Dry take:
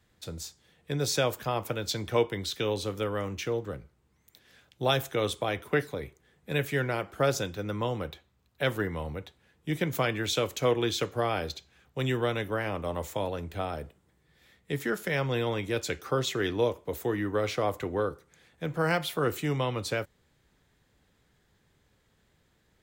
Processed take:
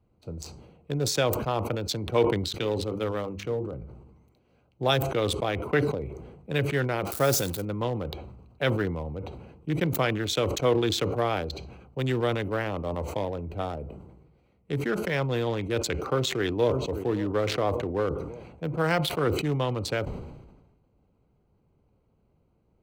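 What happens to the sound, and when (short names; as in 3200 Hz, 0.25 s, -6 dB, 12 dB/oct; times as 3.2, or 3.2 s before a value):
2.42–3.74 notches 50/100/150/200/250/300/350/400/450/500 Hz
7.05–7.65 switching spikes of -26 dBFS
15.99–16.96 echo throw 0.57 s, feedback 30%, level -15.5 dB
whole clip: Wiener smoothing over 25 samples; sustainer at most 48 dB/s; gain +2 dB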